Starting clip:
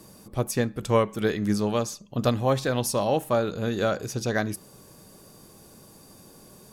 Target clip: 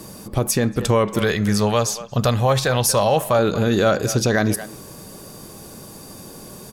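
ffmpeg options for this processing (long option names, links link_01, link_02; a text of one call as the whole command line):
ffmpeg -i in.wav -filter_complex "[0:a]asettb=1/sr,asplit=3[link_01][link_02][link_03];[link_01]atrim=end=1.194[link_04];[link_02]atrim=start=1.19:end=3.39,asetpts=PTS-STARTPTS,afade=type=in:duration=0.004:curve=qsin,afade=type=out:start_time=2.196:duration=0.004:curve=qsin,equalizer=frequency=290:width_type=o:width=0.87:gain=-12[link_05];[link_03]atrim=start=3.386[link_06];[link_04][link_05]acrossfade=duration=0.004:curve1=hsin:curve2=qsin[link_07];[link_07][link_06]acrossfade=duration=0.004:curve1=qsin:curve2=hsin,asplit=2[link_08][link_09];[link_09]adelay=230,highpass=300,lowpass=3400,asoftclip=type=hard:threshold=-18.5dB,volume=-17dB[link_10];[link_08][link_10]amix=inputs=2:normalize=0,alimiter=level_in=18.5dB:limit=-1dB:release=50:level=0:latency=1,volume=-7dB" out.wav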